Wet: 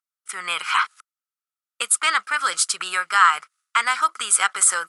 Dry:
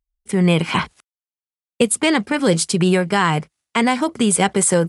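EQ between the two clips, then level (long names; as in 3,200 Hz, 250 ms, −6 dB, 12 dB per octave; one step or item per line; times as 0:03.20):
high-pass with resonance 1,300 Hz, resonance Q 10
parametric band 10,000 Hz +8.5 dB 2.7 octaves
−7.0 dB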